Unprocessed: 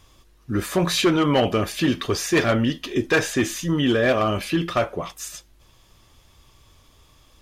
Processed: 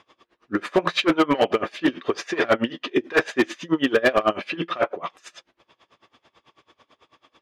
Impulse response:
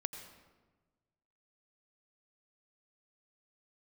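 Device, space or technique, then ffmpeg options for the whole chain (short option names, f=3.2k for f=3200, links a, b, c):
helicopter radio: -af "highpass=330,lowpass=2.7k,aeval=exprs='val(0)*pow(10,-25*(0.5-0.5*cos(2*PI*9.1*n/s))/20)':c=same,asoftclip=type=hard:threshold=-19.5dB,volume=9dB"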